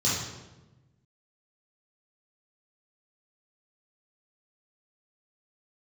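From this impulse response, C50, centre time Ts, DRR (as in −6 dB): 0.0 dB, 68 ms, −8.5 dB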